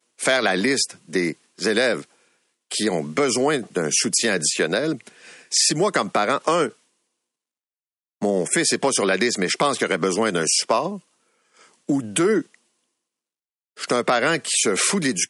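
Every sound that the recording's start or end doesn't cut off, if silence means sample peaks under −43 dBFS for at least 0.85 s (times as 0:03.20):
0:08.22–0:12.55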